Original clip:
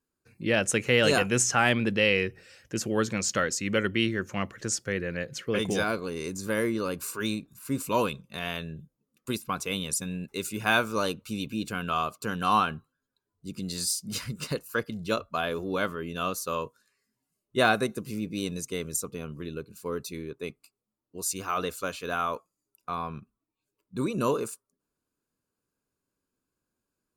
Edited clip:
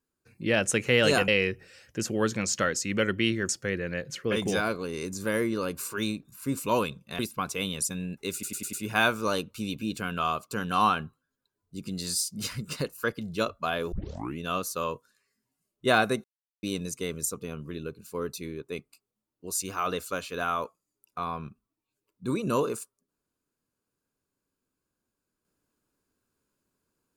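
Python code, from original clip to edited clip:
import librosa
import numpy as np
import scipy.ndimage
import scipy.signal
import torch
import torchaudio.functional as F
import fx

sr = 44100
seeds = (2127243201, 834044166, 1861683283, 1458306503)

y = fx.edit(x, sr, fx.cut(start_s=1.28, length_s=0.76),
    fx.cut(start_s=4.25, length_s=0.47),
    fx.cut(start_s=8.42, length_s=0.88),
    fx.stutter(start_s=10.44, slice_s=0.1, count=5),
    fx.tape_start(start_s=15.63, length_s=0.46),
    fx.silence(start_s=17.95, length_s=0.39), tone=tone)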